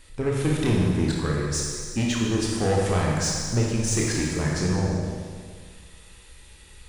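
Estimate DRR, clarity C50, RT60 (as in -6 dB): -3.0 dB, -0.5 dB, 1.9 s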